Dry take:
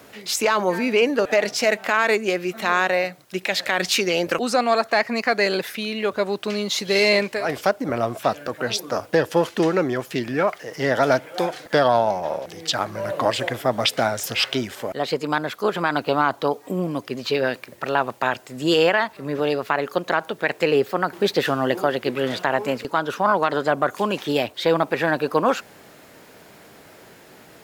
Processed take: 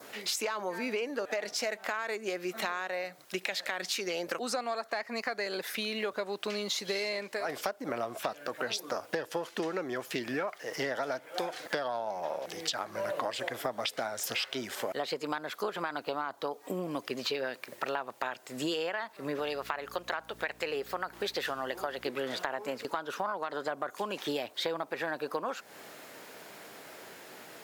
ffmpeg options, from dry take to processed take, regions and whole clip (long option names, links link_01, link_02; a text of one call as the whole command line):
ffmpeg -i in.wav -filter_complex "[0:a]asettb=1/sr,asplit=3[link_01][link_02][link_03];[link_01]atrim=end=19.394[link_04];[link_02]atrim=start=19.39:end=22.05,asetpts=PTS-STARTPTS,afade=type=in:duration=0.004:curve=qsin,afade=type=out:start_time=2.656:duration=0.004:curve=qsin,equalizer=frequency=220:width=0.52:gain=-6.5,aeval=exprs='val(0)+0.0112*(sin(2*PI*60*n/s)+sin(2*PI*2*60*n/s)/2+sin(2*PI*3*60*n/s)/3+sin(2*PI*4*60*n/s)/4+sin(2*PI*5*60*n/s)/5)':channel_layout=same[link_05];[link_03]atrim=start=22.046[link_06];[link_04][link_05]acrossfade=duration=0.004:curve1=hsin:curve2=qsin[link_07];[link_07][link_06]acrossfade=duration=0.004:curve1=qsin:curve2=hsin,highpass=frequency=420:poles=1,adynamicequalizer=threshold=0.0112:dfrequency=2700:dqfactor=2.3:tfrequency=2700:tqfactor=2.3:attack=5:release=100:ratio=0.375:range=2.5:mode=cutabove:tftype=bell,acompressor=threshold=-30dB:ratio=12" out.wav